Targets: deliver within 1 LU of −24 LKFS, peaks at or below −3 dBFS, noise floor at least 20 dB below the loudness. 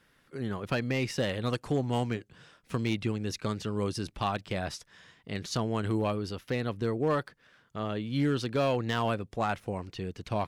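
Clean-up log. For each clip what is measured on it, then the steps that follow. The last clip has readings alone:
share of clipped samples 0.3%; peaks flattened at −20.5 dBFS; integrated loudness −32.0 LKFS; sample peak −20.5 dBFS; target loudness −24.0 LKFS
→ clipped peaks rebuilt −20.5 dBFS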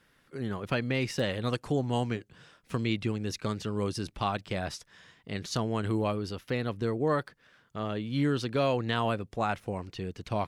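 share of clipped samples 0.0%; integrated loudness −31.5 LKFS; sample peak −14.0 dBFS; target loudness −24.0 LKFS
→ level +7.5 dB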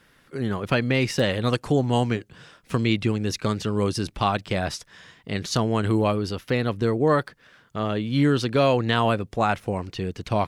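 integrated loudness −24.0 LKFS; sample peak −6.5 dBFS; background noise floor −59 dBFS

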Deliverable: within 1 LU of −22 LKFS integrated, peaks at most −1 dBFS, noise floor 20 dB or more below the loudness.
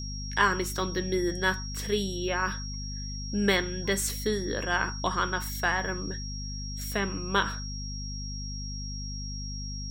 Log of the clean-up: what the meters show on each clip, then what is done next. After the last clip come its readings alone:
mains hum 50 Hz; hum harmonics up to 250 Hz; level of the hum −34 dBFS; interfering tone 5,600 Hz; level of the tone −39 dBFS; integrated loudness −30.0 LKFS; sample peak −9.5 dBFS; target loudness −22.0 LKFS
→ hum removal 50 Hz, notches 5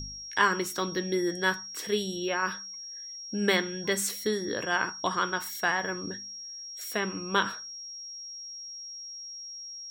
mains hum none found; interfering tone 5,600 Hz; level of the tone −39 dBFS
→ notch filter 5,600 Hz, Q 30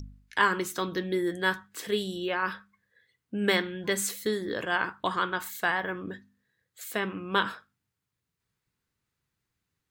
interfering tone none found; integrated loudness −29.5 LKFS; sample peak −9.5 dBFS; target loudness −22.0 LKFS
→ level +7.5 dB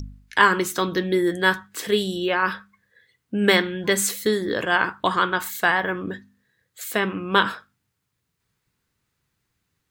integrated loudness −22.0 LKFS; sample peak −2.0 dBFS; background noise floor −77 dBFS

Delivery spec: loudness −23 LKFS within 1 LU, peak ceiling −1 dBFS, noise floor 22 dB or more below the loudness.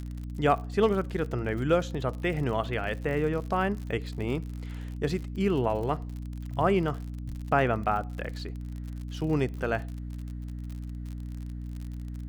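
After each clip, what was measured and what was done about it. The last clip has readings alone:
crackle rate 57 per second; mains hum 60 Hz; hum harmonics up to 300 Hz; level of the hum −34 dBFS; integrated loudness −30.5 LKFS; sample peak −11.0 dBFS; target loudness −23.0 LKFS
→ click removal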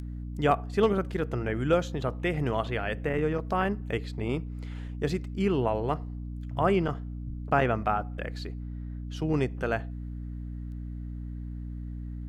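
crackle rate 0.49 per second; mains hum 60 Hz; hum harmonics up to 300 Hz; level of the hum −34 dBFS
→ mains-hum notches 60/120/180/240/300 Hz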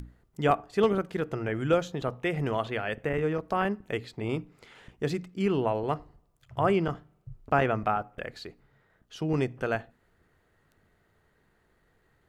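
mains hum none found; integrated loudness −29.5 LKFS; sample peak −11.5 dBFS; target loudness −23.0 LKFS
→ level +6.5 dB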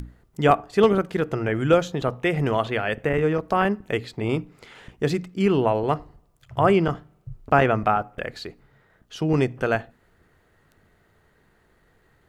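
integrated loudness −23.0 LKFS; sample peak −5.0 dBFS; background noise floor −62 dBFS

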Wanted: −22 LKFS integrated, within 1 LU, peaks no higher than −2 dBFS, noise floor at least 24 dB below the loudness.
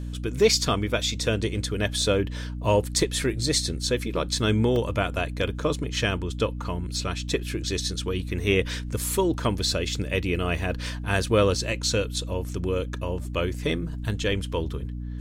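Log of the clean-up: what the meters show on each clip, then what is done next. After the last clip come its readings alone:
number of dropouts 1; longest dropout 2.1 ms; mains hum 60 Hz; hum harmonics up to 300 Hz; level of the hum −30 dBFS; integrated loudness −26.0 LKFS; sample peak −8.0 dBFS; target loudness −22.0 LKFS
→ repair the gap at 0:04.76, 2.1 ms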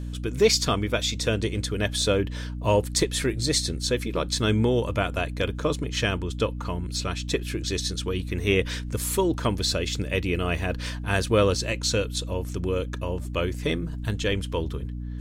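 number of dropouts 0; mains hum 60 Hz; hum harmonics up to 300 Hz; level of the hum −30 dBFS
→ mains-hum notches 60/120/180/240/300 Hz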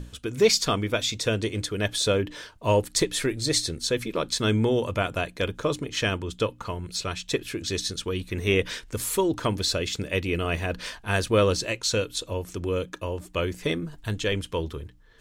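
mains hum none found; integrated loudness −26.5 LKFS; sample peak −8.0 dBFS; target loudness −22.0 LKFS
→ level +4.5 dB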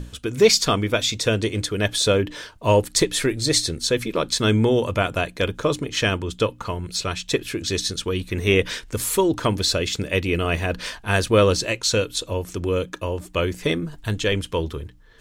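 integrated loudness −22.0 LKFS; sample peak −3.5 dBFS; background noise floor −47 dBFS

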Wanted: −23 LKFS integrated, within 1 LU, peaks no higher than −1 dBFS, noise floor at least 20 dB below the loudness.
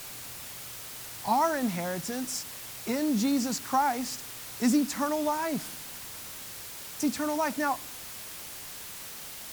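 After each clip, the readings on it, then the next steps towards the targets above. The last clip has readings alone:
background noise floor −42 dBFS; target noise floor −51 dBFS; integrated loudness −31.0 LKFS; sample peak −14.0 dBFS; target loudness −23.0 LKFS
→ broadband denoise 9 dB, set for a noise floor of −42 dBFS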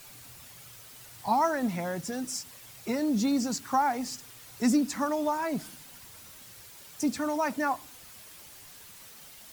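background noise floor −50 dBFS; integrated loudness −29.5 LKFS; sample peak −14.0 dBFS; target loudness −23.0 LKFS
→ level +6.5 dB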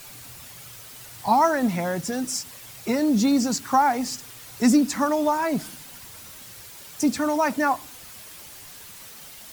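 integrated loudness −23.0 LKFS; sample peak −7.5 dBFS; background noise floor −43 dBFS

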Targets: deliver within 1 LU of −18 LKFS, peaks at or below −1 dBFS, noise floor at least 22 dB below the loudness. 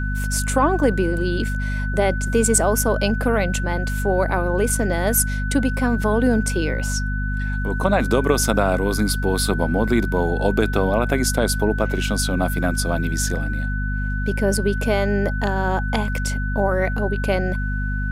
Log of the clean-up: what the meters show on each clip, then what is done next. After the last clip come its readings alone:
mains hum 50 Hz; hum harmonics up to 250 Hz; level of the hum −21 dBFS; interfering tone 1,500 Hz; level of the tone −29 dBFS; integrated loudness −21.0 LKFS; sample peak −3.0 dBFS; target loudness −18.0 LKFS
→ hum removal 50 Hz, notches 5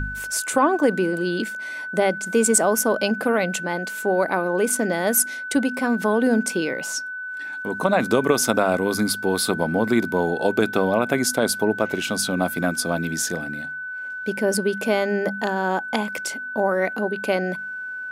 mains hum none found; interfering tone 1,500 Hz; level of the tone −29 dBFS
→ notch filter 1,500 Hz, Q 30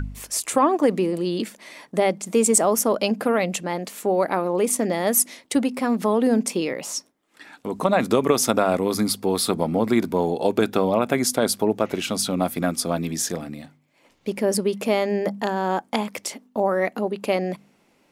interfering tone none found; integrated loudness −22.5 LKFS; sample peak −3.5 dBFS; target loudness −18.0 LKFS
→ level +4.5 dB
brickwall limiter −1 dBFS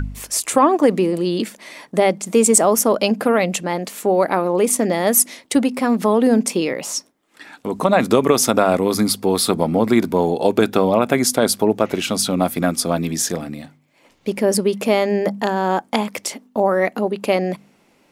integrated loudness −18.0 LKFS; sample peak −1.0 dBFS; background noise floor −57 dBFS

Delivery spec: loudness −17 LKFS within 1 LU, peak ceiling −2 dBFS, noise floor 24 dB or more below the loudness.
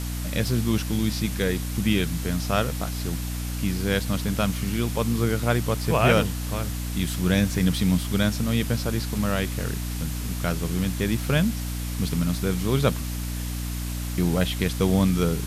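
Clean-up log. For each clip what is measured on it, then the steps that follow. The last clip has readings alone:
mains hum 60 Hz; hum harmonics up to 300 Hz; level of the hum −27 dBFS; background noise floor −30 dBFS; target noise floor −49 dBFS; integrated loudness −25.0 LKFS; sample peak −6.5 dBFS; target loudness −17.0 LKFS
→ hum removal 60 Hz, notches 5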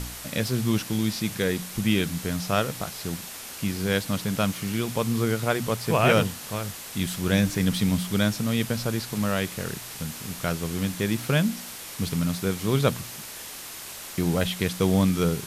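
mains hum none found; background noise floor −39 dBFS; target noise floor −51 dBFS
→ broadband denoise 12 dB, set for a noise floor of −39 dBFS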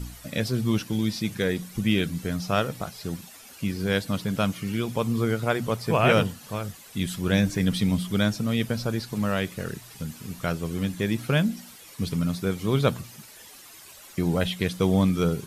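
background noise floor −48 dBFS; target noise floor −51 dBFS
→ broadband denoise 6 dB, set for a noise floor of −48 dBFS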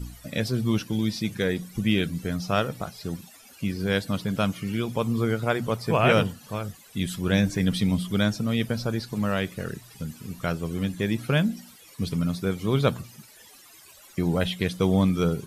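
background noise floor −51 dBFS; integrated loudness −26.5 LKFS; sample peak −7.0 dBFS; target loudness −17.0 LKFS
→ level +9.5 dB
brickwall limiter −2 dBFS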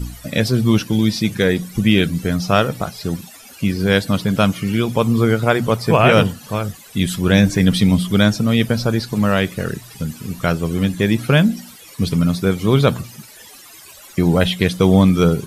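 integrated loudness −17.5 LKFS; sample peak −2.0 dBFS; background noise floor −42 dBFS

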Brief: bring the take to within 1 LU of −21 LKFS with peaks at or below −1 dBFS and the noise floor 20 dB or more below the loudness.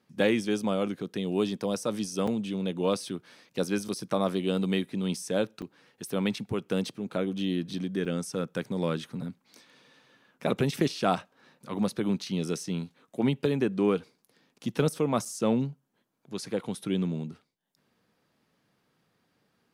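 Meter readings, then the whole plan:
number of dropouts 5; longest dropout 5.6 ms; integrated loudness −30.0 LKFS; sample peak −12.5 dBFS; target loudness −21.0 LKFS
→ repair the gap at 0:02.27/0:03.88/0:05.62/0:08.05/0:15.25, 5.6 ms
level +9 dB

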